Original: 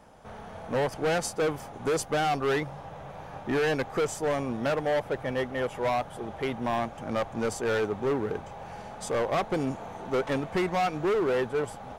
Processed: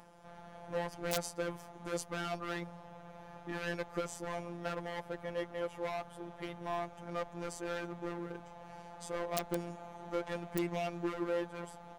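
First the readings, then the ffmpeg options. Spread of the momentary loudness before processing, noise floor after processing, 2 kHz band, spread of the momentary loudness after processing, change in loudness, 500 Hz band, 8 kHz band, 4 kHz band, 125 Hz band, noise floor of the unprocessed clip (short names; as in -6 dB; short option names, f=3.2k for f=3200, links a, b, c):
13 LU, -53 dBFS, -10.0 dB, 13 LU, -10.5 dB, -11.5 dB, -7.5 dB, -8.5 dB, -9.5 dB, -44 dBFS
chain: -af "afftfilt=real='hypot(re,im)*cos(PI*b)':imag='0':win_size=1024:overlap=0.75,aeval=exprs='(mod(5.01*val(0)+1,2)-1)/5.01':c=same,acompressor=mode=upward:threshold=-44dB:ratio=2.5,volume=-6dB"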